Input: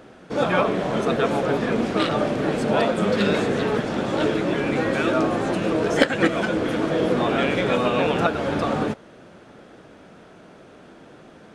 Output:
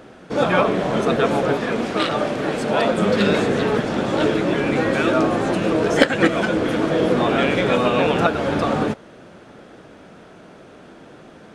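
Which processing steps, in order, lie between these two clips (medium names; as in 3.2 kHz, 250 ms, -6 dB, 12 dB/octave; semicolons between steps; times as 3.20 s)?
1.53–2.85 s: bass shelf 390 Hz -6 dB; trim +3 dB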